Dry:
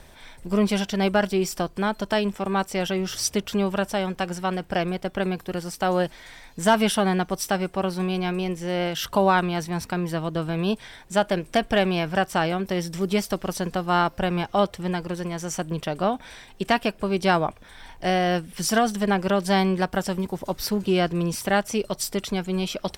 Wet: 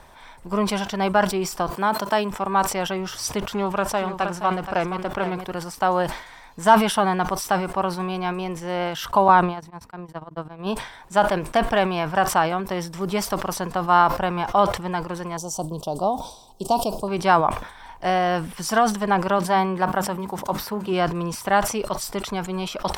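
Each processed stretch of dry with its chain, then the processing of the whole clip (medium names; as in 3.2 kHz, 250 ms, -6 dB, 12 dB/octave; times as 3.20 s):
1.70–2.31 s: high-pass 140 Hz + treble shelf 11 kHz +8.5 dB
3.50–5.50 s: delay 473 ms -10 dB + loudspeaker Doppler distortion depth 0.17 ms
9.28–10.67 s: gate -24 dBFS, range -46 dB + tilt shelf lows +3.5 dB, about 930 Hz
15.37–17.08 s: Chebyshev band-stop 750–4400 Hz + treble shelf 3.9 kHz +6 dB
19.38–20.93 s: high-pass 91 Hz 6 dB/octave + hum notches 50/100/150/200/250/300 Hz + dynamic bell 5.7 kHz, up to -6 dB, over -43 dBFS, Q 0.77
whole clip: peaking EQ 1 kHz +12 dB 1.1 oct; decay stretcher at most 99 dB/s; trim -3.5 dB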